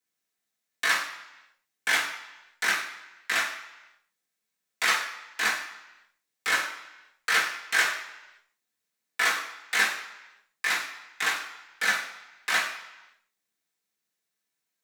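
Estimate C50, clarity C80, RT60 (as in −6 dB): 6.5 dB, 9.5 dB, 0.95 s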